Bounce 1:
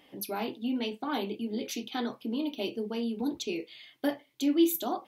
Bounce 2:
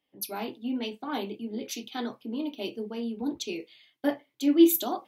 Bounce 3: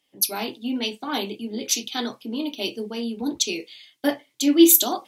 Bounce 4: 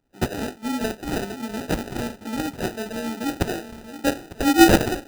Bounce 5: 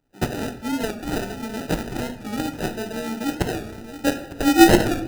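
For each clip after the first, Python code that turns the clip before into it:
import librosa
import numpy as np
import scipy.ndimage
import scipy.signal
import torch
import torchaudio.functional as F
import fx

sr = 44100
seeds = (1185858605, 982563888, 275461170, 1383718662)

y1 = fx.band_widen(x, sr, depth_pct=70)
y2 = fx.peak_eq(y1, sr, hz=7300.0, db=13.0, octaves=2.3)
y2 = y2 * 10.0 ** (4.0 / 20.0)
y3 = fx.echo_swing(y2, sr, ms=900, ratio=3, feedback_pct=41, wet_db=-13.5)
y3 = fx.sample_hold(y3, sr, seeds[0], rate_hz=1100.0, jitter_pct=0)
y4 = fx.room_shoebox(y3, sr, seeds[1], volume_m3=450.0, walls='mixed', distance_m=0.45)
y4 = fx.record_warp(y4, sr, rpm=45.0, depth_cents=100.0)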